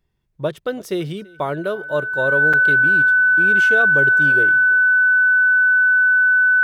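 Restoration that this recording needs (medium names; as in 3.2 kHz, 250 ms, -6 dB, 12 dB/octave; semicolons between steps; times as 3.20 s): band-stop 1.5 kHz, Q 30; interpolate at 2.53 s, 5.8 ms; inverse comb 334 ms -24 dB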